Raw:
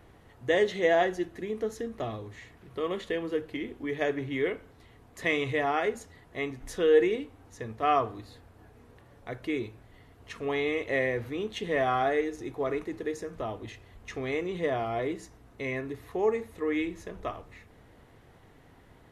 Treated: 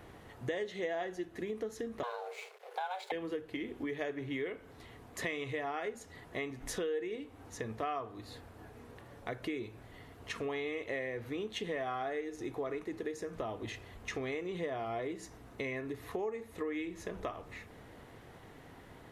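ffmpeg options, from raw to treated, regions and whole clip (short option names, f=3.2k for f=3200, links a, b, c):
-filter_complex "[0:a]asettb=1/sr,asplit=3[a][b][c];[a]atrim=end=2.034[d];[b]atrim=start=2.03:end=3.12,asetpts=PTS-STARTPTS,afade=t=in:d=0.004:c=qsin,afade=t=out:st=1.086:d=0.004:c=qsin,aeval=exprs='sgn(val(0))*max(abs(val(0))-0.00158,0)':c=same,afreqshift=360[e];[c]atrim=start=3.116[f];[d][e]acrossfade=d=0.004:c1=hsin:c2=qsin[g];[g][f]acrossfade=d=0.004:c1=qsin:c2=hsin,lowshelf=f=89:g=-7.5,acompressor=threshold=-40dB:ratio=5,volume=4dB"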